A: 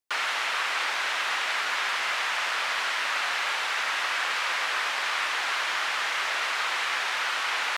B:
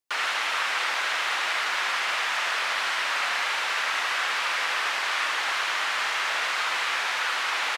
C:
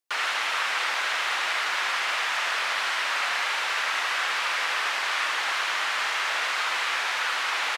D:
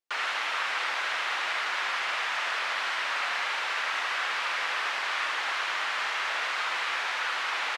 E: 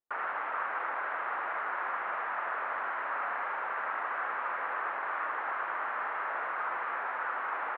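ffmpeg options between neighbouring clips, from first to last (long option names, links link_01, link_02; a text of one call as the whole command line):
ffmpeg -i in.wav -af "aecho=1:1:78:0.562" out.wav
ffmpeg -i in.wav -af "highpass=frequency=170:poles=1" out.wav
ffmpeg -i in.wav -af "highshelf=frequency=7700:gain=-11.5,volume=-2.5dB" out.wav
ffmpeg -i in.wav -af "lowpass=frequency=1500:width=0.5412,lowpass=frequency=1500:width=1.3066" out.wav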